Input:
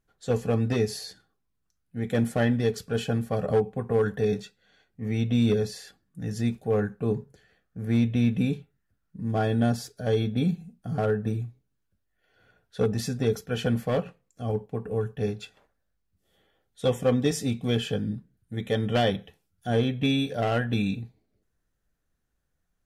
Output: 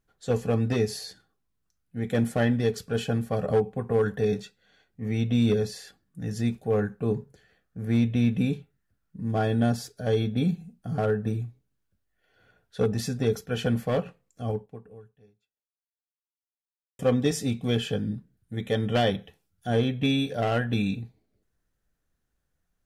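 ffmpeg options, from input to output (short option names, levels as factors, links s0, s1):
-filter_complex "[0:a]asplit=2[s0][s1];[s0]atrim=end=16.99,asetpts=PTS-STARTPTS,afade=t=out:st=14.49:d=2.5:c=exp[s2];[s1]atrim=start=16.99,asetpts=PTS-STARTPTS,afade=t=in:d=0.004:c=hsin[s3];[s2][s3]concat=n=2:v=0:a=1"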